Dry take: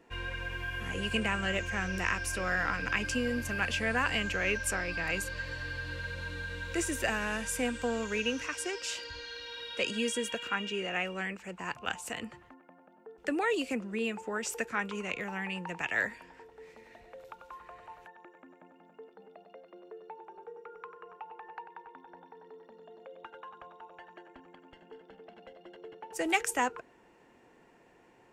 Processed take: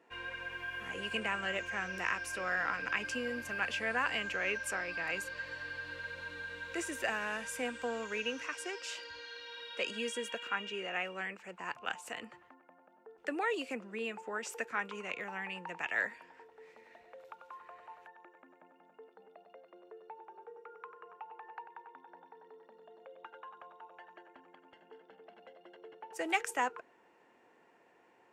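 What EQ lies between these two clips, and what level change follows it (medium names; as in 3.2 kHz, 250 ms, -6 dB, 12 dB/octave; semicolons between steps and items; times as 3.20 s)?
high-pass 620 Hz 6 dB/octave; treble shelf 3.1 kHz -9 dB; 0.0 dB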